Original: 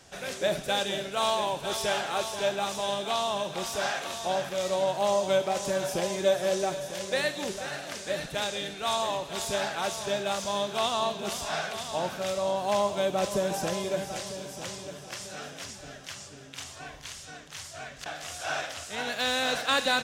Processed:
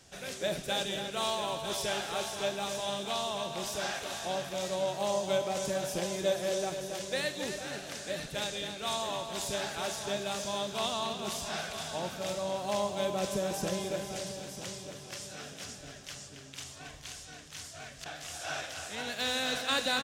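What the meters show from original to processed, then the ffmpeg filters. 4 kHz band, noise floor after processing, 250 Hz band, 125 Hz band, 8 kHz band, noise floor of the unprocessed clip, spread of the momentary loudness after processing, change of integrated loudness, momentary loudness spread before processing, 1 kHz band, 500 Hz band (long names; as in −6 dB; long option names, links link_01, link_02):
−3.0 dB, −49 dBFS, −2.5 dB, −2.0 dB, −2.0 dB, −46 dBFS, 12 LU, −4.5 dB, 14 LU, −6.0 dB, −5.0 dB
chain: -filter_complex "[0:a]equalizer=frequency=960:width_type=o:width=2.6:gain=-5,asplit=2[link_01][link_02];[link_02]adelay=274.1,volume=-7dB,highshelf=frequency=4000:gain=-6.17[link_03];[link_01][link_03]amix=inputs=2:normalize=0,volume=-2dB"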